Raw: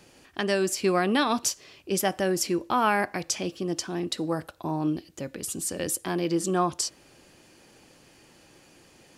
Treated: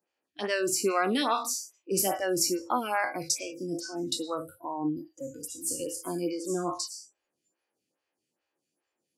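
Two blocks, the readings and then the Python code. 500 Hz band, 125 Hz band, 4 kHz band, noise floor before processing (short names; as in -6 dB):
-3.0 dB, -9.0 dB, -1.5 dB, -57 dBFS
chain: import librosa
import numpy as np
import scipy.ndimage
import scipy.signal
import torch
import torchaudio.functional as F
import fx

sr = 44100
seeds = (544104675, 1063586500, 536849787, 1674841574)

y = fx.spec_trails(x, sr, decay_s=0.47)
y = fx.noise_reduce_blind(y, sr, reduce_db=26)
y = fx.highpass(y, sr, hz=240.0, slope=6)
y = fx.stagger_phaser(y, sr, hz=2.4)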